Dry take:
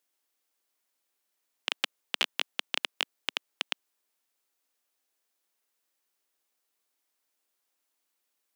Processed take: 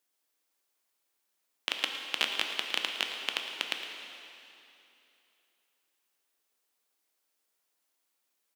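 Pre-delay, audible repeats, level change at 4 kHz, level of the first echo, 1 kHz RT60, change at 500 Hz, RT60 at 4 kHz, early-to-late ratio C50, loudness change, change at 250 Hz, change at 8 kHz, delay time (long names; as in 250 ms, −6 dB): 6 ms, 1, +0.5 dB, −14.0 dB, 2.8 s, +1.0 dB, 2.7 s, 3.5 dB, +0.5 dB, +1.0 dB, +1.0 dB, 111 ms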